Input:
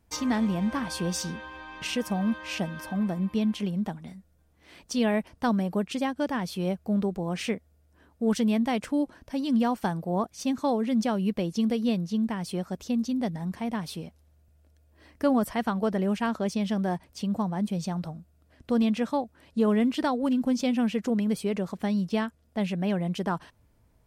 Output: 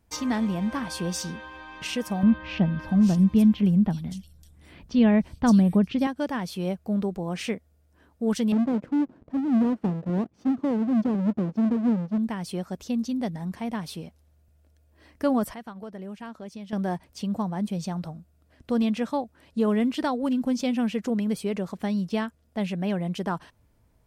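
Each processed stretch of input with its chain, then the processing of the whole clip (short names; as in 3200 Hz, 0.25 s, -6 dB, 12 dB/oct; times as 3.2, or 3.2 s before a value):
2.23–6.07 tone controls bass +13 dB, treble +1 dB + bands offset in time lows, highs 0.57 s, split 4200 Hz
8.52–12.18 half-waves squared off + band-pass 240 Hz, Q 1
15.54–16.73 gate -28 dBFS, range -8 dB + compressor 5:1, threshold -36 dBFS
whole clip: dry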